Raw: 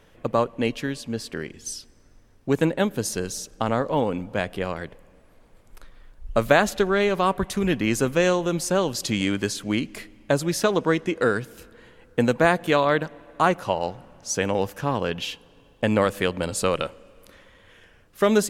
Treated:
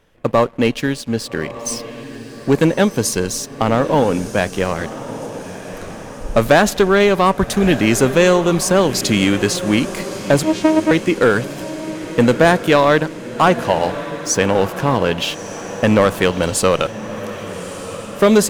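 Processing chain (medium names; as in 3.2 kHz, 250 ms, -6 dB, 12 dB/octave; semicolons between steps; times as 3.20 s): waveshaping leveller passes 2; 10.43–10.91 s: vocoder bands 4, saw 314 Hz; echo that smears into a reverb 1246 ms, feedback 56%, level -13 dB; trim +1.5 dB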